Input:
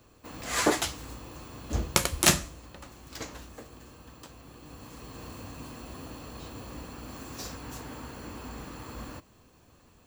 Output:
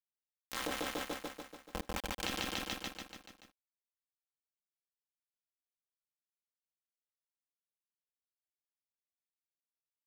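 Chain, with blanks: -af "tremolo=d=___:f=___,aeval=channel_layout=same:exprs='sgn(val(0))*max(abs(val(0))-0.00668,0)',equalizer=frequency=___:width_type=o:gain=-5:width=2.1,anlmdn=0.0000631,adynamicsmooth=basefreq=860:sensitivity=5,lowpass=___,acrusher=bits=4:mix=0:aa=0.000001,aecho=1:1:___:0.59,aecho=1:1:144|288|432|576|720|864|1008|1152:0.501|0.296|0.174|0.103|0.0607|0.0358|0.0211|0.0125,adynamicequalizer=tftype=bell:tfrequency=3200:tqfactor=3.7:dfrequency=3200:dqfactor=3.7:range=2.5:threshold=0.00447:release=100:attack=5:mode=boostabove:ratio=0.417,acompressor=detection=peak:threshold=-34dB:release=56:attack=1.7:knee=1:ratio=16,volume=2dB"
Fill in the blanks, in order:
0.947, 130, 69, 5500, 3.8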